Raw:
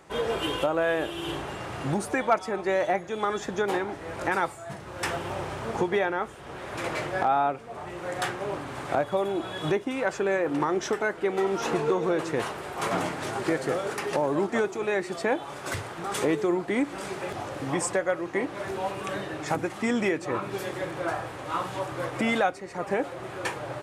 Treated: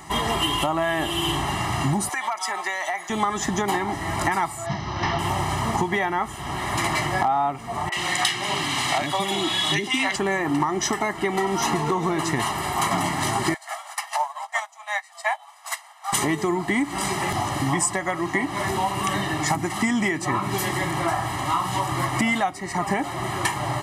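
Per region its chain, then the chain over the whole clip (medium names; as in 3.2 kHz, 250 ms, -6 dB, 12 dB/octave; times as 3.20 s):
2.09–3.10 s: high-pass 830 Hz + compression 10:1, threshold -32 dBFS
4.66–5.19 s: one-bit delta coder 64 kbps, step -46 dBFS + Chebyshev low-pass 5.8 kHz, order 5
7.89–10.16 s: frequency weighting D + three bands offset in time mids, highs, lows 30/70 ms, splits 450/1500 Hz
13.54–16.13 s: brick-wall FIR high-pass 600 Hz + doubling 20 ms -13 dB + upward expansion 2.5:1, over -41 dBFS
whole clip: treble shelf 5.9 kHz +8 dB; comb 1 ms, depth 95%; compression 4:1, threshold -29 dBFS; trim +8.5 dB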